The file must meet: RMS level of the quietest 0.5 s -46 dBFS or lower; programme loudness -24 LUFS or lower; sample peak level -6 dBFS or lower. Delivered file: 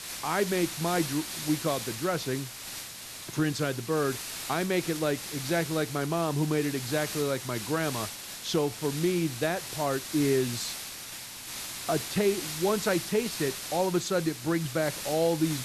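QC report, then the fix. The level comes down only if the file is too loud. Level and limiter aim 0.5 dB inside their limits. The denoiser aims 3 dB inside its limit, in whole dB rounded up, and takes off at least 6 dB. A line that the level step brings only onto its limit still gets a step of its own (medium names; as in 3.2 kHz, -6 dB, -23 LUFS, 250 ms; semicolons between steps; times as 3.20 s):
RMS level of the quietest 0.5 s -42 dBFS: fail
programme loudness -29.5 LUFS: pass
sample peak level -14.0 dBFS: pass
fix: noise reduction 7 dB, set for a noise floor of -42 dBFS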